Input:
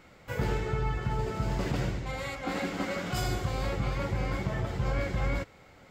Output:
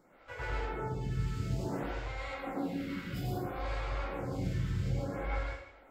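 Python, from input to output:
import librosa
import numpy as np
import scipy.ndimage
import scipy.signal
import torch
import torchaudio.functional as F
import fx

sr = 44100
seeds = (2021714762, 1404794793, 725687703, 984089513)

y = fx.peak_eq(x, sr, hz=7000.0, db=-13.0, octaves=1.2, at=(2.37, 3.56))
y = fx.rev_plate(y, sr, seeds[0], rt60_s=0.68, hf_ratio=0.9, predelay_ms=85, drr_db=-2.5)
y = fx.stagger_phaser(y, sr, hz=0.59)
y = y * 10.0 ** (-6.0 / 20.0)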